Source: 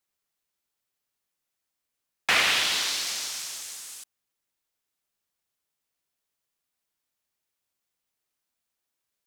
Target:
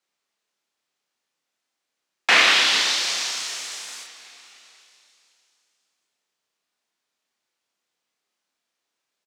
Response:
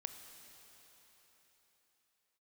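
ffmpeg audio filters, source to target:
-filter_complex "[0:a]acrossover=split=180 7500:gain=0.141 1 0.158[link_01][link_02][link_03];[link_01][link_02][link_03]amix=inputs=3:normalize=0,asplit=2[link_04][link_05];[link_05]adelay=30,volume=-3.5dB[link_06];[link_04][link_06]amix=inputs=2:normalize=0,asplit=2[link_07][link_08];[1:a]atrim=start_sample=2205[link_09];[link_08][link_09]afir=irnorm=-1:irlink=0,volume=5dB[link_10];[link_07][link_10]amix=inputs=2:normalize=0,volume=-1.5dB"

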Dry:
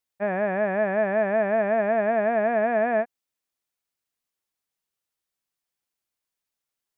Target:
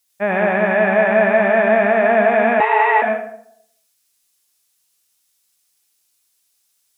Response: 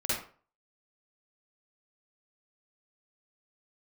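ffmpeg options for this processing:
-filter_complex "[0:a]highshelf=frequency=2600:gain=11.5,asplit=2[link_01][link_02];[1:a]atrim=start_sample=2205,asetrate=26019,aresample=44100,highshelf=frequency=2500:gain=11[link_03];[link_02][link_03]afir=irnorm=-1:irlink=0,volume=-12dB[link_04];[link_01][link_04]amix=inputs=2:normalize=0,asettb=1/sr,asplit=3[link_05][link_06][link_07];[link_05]atrim=end=2.604[link_08];[link_06]atrim=start=2.6:end=3.02,asetpts=PTS-STARTPTS,afade=type=in:duration=0.004:curve=qsin,afade=type=out:start_time=0.416:duration=0.004:curve=qsin,afreqshift=210[link_09];[link_07]atrim=start=3.016[link_10];[link_08][link_09]acrossfade=duration=0.004:curve1=hsin:curve2=qsin[link_11];[link_11][link_10]acrossfade=duration=0.004:curve1=qsin:curve2=hsin,volume=3.5dB"

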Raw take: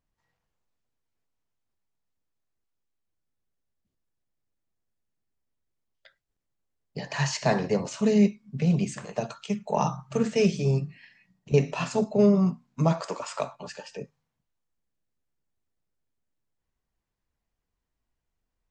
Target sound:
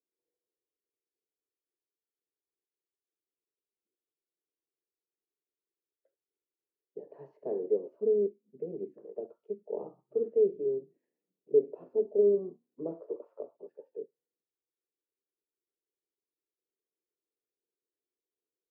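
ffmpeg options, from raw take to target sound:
ffmpeg -i in.wav -filter_complex "[0:a]asuperpass=centerf=400:order=4:qfactor=2.6,asettb=1/sr,asplit=3[link_01][link_02][link_03];[link_01]atrim=end=12.024[link_04];[link_02]atrim=start=12.02:end=13.16,asetpts=PTS-STARTPTS,afade=type=in:duration=0.004:curve=qsin,afade=type=out:start_time=1.136:duration=0.004:curve=qsin,asplit=2[link_05][link_06];[link_06]adelay=30,volume=-10dB[link_07];[link_05][link_07]amix=inputs=2:normalize=0,atrim=end_sample=50274[link_08];[link_03]atrim=start=13.156[link_09];[link_04][link_08]acrossfade=duration=0.004:curve1=hsin:curve2=qsin[link_10];[link_10][link_09]acrossfade=duration=0.004:curve1=qsin:curve2=hsin" out.wav

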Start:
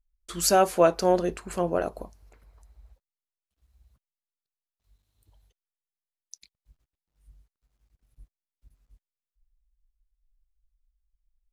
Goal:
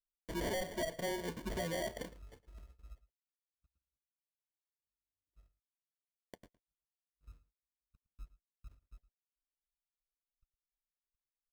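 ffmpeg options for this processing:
ffmpeg -i in.wav -filter_complex "[0:a]afftfilt=real='re*pow(10,18/40*sin(2*PI*(1.3*log(max(b,1)*sr/1024/100)/log(2)-(2.8)*(pts-256)/sr)))':imag='im*pow(10,18/40*sin(2*PI*(1.3*log(max(b,1)*sr/1024/100)/log(2)-(2.8)*(pts-256)/sr)))':win_size=1024:overlap=0.75,agate=range=-34dB:threshold=-54dB:ratio=16:detection=peak,acompressor=threshold=-28dB:ratio=6,acrusher=samples=34:mix=1:aa=0.000001,asoftclip=type=tanh:threshold=-29.5dB,asuperstop=centerf=800:order=4:qfactor=6.3,asplit=2[link_01][link_02];[link_02]adelay=110.8,volume=-18dB,highshelf=frequency=4000:gain=-2.49[link_03];[link_01][link_03]amix=inputs=2:normalize=0,volume=-2.5dB" out.wav

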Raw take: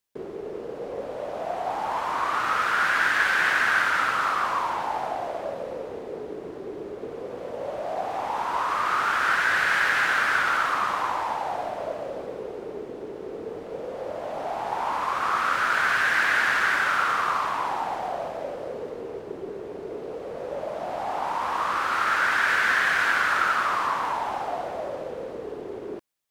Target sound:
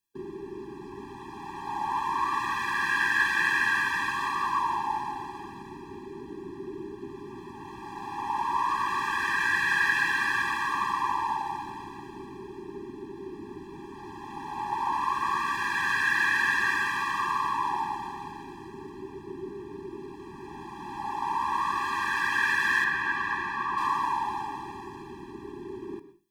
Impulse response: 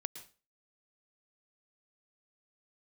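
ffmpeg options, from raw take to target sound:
-filter_complex "[0:a]asettb=1/sr,asplit=3[link_01][link_02][link_03];[link_01]atrim=end=22.844[link_04];[link_02]atrim=start=22.84:end=23.78,asetpts=PTS-STARTPTS,afade=type=in:duration=0.004:curve=qsin,afade=type=out:start_time=0.936:duration=0.004:curve=qsin,lowpass=frequency=1700:poles=1[link_05];[link_03]atrim=start=23.776[link_06];[link_04][link_05]acrossfade=duration=0.004:curve1=hsin:curve2=qsin[link_07];[link_07][link_06]acrossfade=duration=0.004:curve1=qsin:curve2=hsin,asplit=2[link_08][link_09];[1:a]atrim=start_sample=2205[link_10];[link_09][link_10]afir=irnorm=-1:irlink=0,volume=5dB[link_11];[link_08][link_11]amix=inputs=2:normalize=0,afftfilt=real='re*eq(mod(floor(b*sr/1024/390),2),0)':imag='im*eq(mod(floor(b*sr/1024/390),2),0)':win_size=1024:overlap=0.75,volume=-7.5dB"

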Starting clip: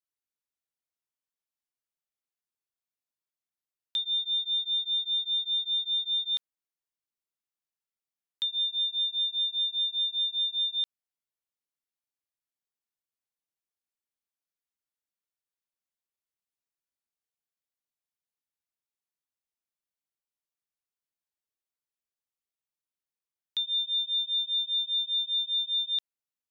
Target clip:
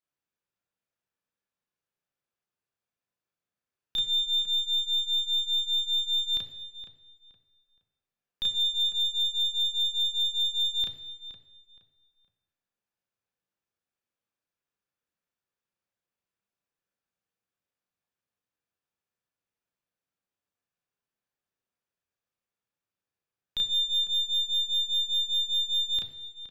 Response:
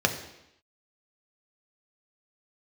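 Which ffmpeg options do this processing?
-filter_complex "[0:a]aeval=exprs='0.0708*(cos(1*acos(clip(val(0)/0.0708,-1,1)))-cos(1*PI/2))+0.00891*(cos(4*acos(clip(val(0)/0.0708,-1,1)))-cos(4*PI/2))+0.000501*(cos(6*acos(clip(val(0)/0.0708,-1,1)))-cos(6*PI/2))':channel_layout=same,highshelf=frequency=3600:gain=-11,asplit=2[link_01][link_02];[link_02]adelay=469,lowpass=frequency=3200:poles=1,volume=-12dB,asplit=2[link_03][link_04];[link_04]adelay=469,lowpass=frequency=3200:poles=1,volume=0.29,asplit=2[link_05][link_06];[link_06]adelay=469,lowpass=frequency=3200:poles=1,volume=0.29[link_07];[link_01][link_03][link_05][link_07]amix=inputs=4:normalize=0,asplit=2[link_08][link_09];[1:a]atrim=start_sample=2205,adelay=32[link_10];[link_09][link_10]afir=irnorm=-1:irlink=0,volume=-11dB[link_11];[link_08][link_11]amix=inputs=2:normalize=0,volume=3.5dB"

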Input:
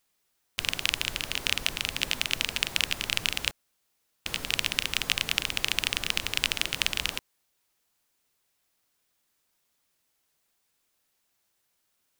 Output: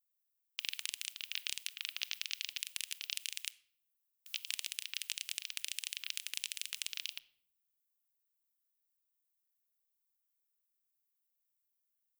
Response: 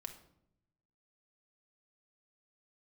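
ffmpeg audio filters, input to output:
-filter_complex "[0:a]aderivative,afwtdn=0.00794,highshelf=frequency=12000:gain=11.5,agate=range=-9dB:threshold=-41dB:ratio=16:detection=peak,acompressor=threshold=-37dB:ratio=12,asoftclip=type=tanh:threshold=-18dB,asplit=2[link_01][link_02];[1:a]atrim=start_sample=2205[link_03];[link_02][link_03]afir=irnorm=-1:irlink=0,volume=-2.5dB[link_04];[link_01][link_04]amix=inputs=2:normalize=0,volume=2dB"

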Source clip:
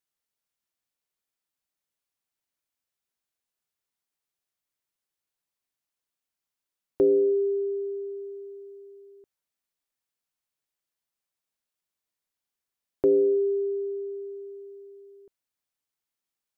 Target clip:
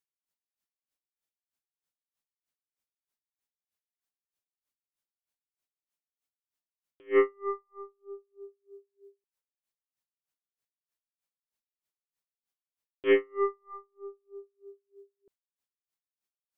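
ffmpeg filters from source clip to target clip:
ffmpeg -i in.wav -af "aeval=exprs='0.188*(cos(1*acos(clip(val(0)/0.188,-1,1)))-cos(1*PI/2))+0.00473*(cos(4*acos(clip(val(0)/0.188,-1,1)))-cos(4*PI/2))+0.0473*(cos(7*acos(clip(val(0)/0.188,-1,1)))-cos(7*PI/2))':channel_layout=same,aeval=exprs='val(0)*pow(10,-39*(0.5-0.5*cos(2*PI*3.2*n/s))/20)':channel_layout=same,volume=1dB" out.wav

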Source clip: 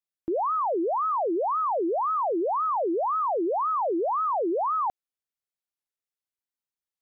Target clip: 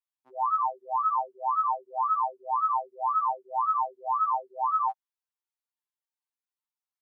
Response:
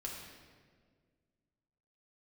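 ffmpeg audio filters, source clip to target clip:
-af "highpass=230,lowshelf=frequency=590:width_type=q:width=3:gain=-14,afftfilt=real='re*2.45*eq(mod(b,6),0)':imag='im*2.45*eq(mod(b,6),0)':win_size=2048:overlap=0.75,volume=-4dB"

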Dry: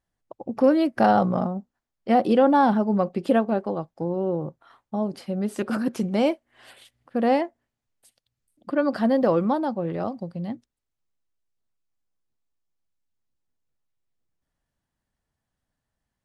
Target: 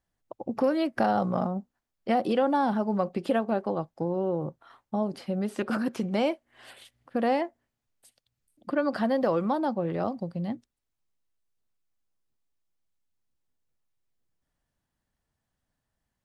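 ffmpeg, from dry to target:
ffmpeg -i in.wav -filter_complex "[0:a]acrossover=split=590|4700[link_01][link_02][link_03];[link_01]acompressor=threshold=-27dB:ratio=4[link_04];[link_02]acompressor=threshold=-26dB:ratio=4[link_05];[link_03]acompressor=threshold=-53dB:ratio=4[link_06];[link_04][link_05][link_06]amix=inputs=3:normalize=0" out.wav

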